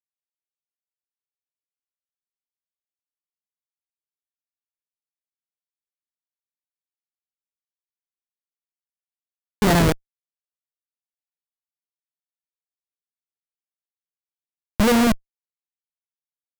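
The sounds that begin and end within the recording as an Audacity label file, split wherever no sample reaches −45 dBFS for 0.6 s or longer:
9.620000	9.960000	sound
14.800000	15.170000	sound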